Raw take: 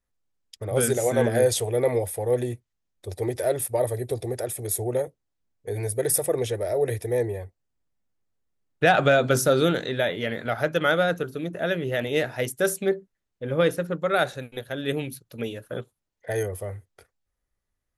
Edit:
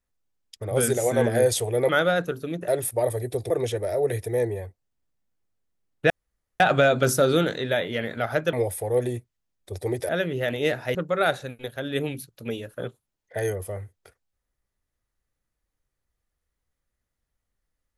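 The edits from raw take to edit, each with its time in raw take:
1.89–3.45 swap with 10.81–11.6
4.27–6.28 cut
8.88 insert room tone 0.50 s
12.46–13.88 cut

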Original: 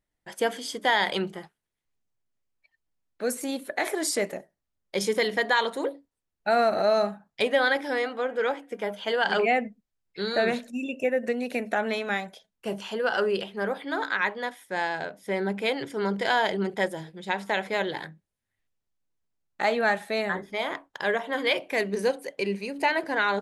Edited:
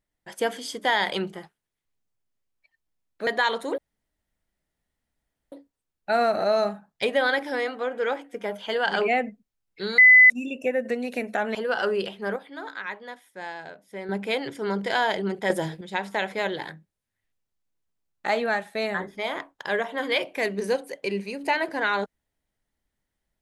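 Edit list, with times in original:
3.27–5.39 cut
5.9 insert room tone 1.74 s
10.36–10.68 bleep 2010 Hz -9 dBFS
11.93–12.9 cut
13.71–15.44 gain -8 dB
16.85–17.16 gain +8 dB
19.76–20.1 fade out, to -7.5 dB

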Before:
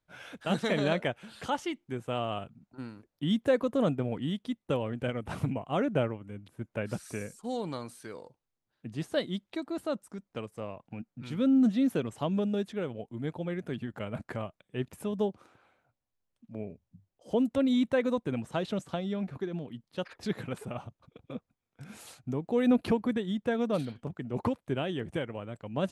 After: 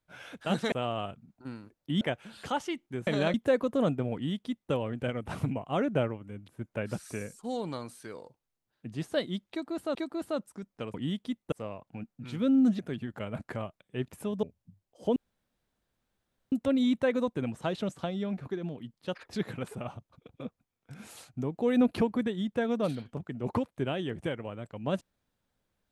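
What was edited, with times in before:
0.72–0.99 swap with 2.05–3.34
4.14–4.72 copy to 10.5
9.51–9.95 loop, 2 plays
11.77–13.59 cut
15.23–16.69 cut
17.42 insert room tone 1.36 s

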